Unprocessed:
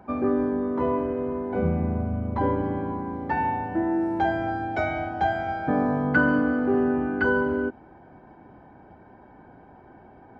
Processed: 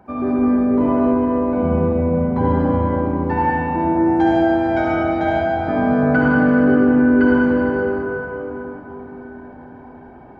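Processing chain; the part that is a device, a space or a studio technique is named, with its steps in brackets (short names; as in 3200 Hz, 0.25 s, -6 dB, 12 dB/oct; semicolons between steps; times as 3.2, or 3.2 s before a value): 4.16–4.66 high shelf 4200 Hz +8 dB; cathedral (reverb RT60 4.3 s, pre-delay 55 ms, DRR -6.5 dB)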